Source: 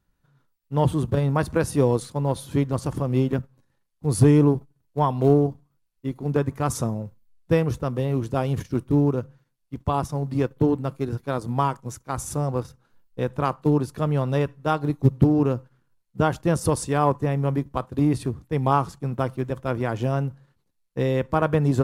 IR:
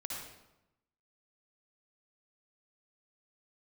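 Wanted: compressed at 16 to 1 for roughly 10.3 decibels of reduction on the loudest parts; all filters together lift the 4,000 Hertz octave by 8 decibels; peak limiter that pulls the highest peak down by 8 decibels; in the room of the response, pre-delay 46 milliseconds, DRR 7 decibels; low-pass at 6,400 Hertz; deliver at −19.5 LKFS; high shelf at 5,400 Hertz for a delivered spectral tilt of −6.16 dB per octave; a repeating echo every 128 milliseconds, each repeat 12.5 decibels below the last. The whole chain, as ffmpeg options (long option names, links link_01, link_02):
-filter_complex "[0:a]lowpass=6400,equalizer=frequency=4000:width_type=o:gain=8.5,highshelf=frequency=5400:gain=6,acompressor=threshold=-21dB:ratio=16,alimiter=limit=-19dB:level=0:latency=1,aecho=1:1:128|256|384:0.237|0.0569|0.0137,asplit=2[link_01][link_02];[1:a]atrim=start_sample=2205,adelay=46[link_03];[link_02][link_03]afir=irnorm=-1:irlink=0,volume=-7.5dB[link_04];[link_01][link_04]amix=inputs=2:normalize=0,volume=10dB"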